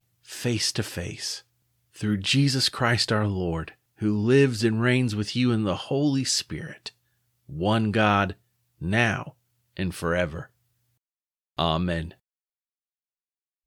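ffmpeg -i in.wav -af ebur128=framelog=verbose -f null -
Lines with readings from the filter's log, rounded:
Integrated loudness:
  I:         -24.7 LUFS
  Threshold: -35.7 LUFS
Loudness range:
  LRA:         7.0 LU
  Threshold: -45.8 LUFS
  LRA low:   -30.5 LUFS
  LRA high:  -23.5 LUFS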